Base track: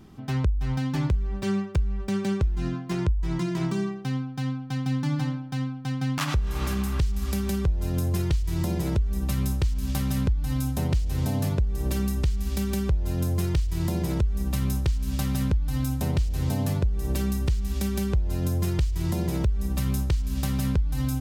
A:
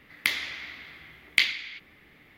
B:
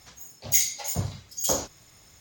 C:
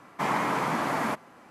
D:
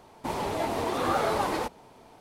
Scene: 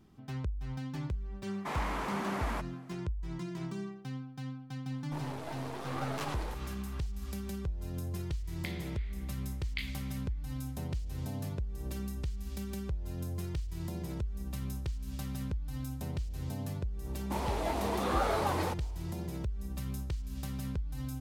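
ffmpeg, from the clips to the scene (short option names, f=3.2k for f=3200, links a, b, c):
-filter_complex "[4:a]asplit=2[a][b];[0:a]volume=-12dB[c];[3:a]asoftclip=type=hard:threshold=-25dB[d];[a]aeval=exprs='if(lt(val(0),0),0.251*val(0),val(0))':c=same[e];[1:a]aresample=11025,aresample=44100[f];[d]atrim=end=1.5,asetpts=PTS-STARTPTS,volume=-7.5dB,afade=t=in:d=0.004:c=hsin,afade=t=out:st=1.496:d=0.004:c=hsin,adelay=1460[g];[e]atrim=end=2.2,asetpts=PTS-STARTPTS,volume=-9.5dB,afade=t=in:d=0.004:c=hsin,afade=t=out:st=2.196:d=0.004:c=hsin,adelay=4870[h];[f]atrim=end=2.37,asetpts=PTS-STARTPTS,volume=-17.5dB,afade=t=in:d=0.004:c=hsin,afade=t=out:st=2.366:d=0.004:c=hsin,adelay=8390[i];[b]atrim=end=2.2,asetpts=PTS-STARTPTS,volume=-4.5dB,afade=t=in:d=0.004:c=hsin,afade=t=out:st=2.196:d=0.004:c=hsin,adelay=17060[j];[c][g][h][i][j]amix=inputs=5:normalize=0"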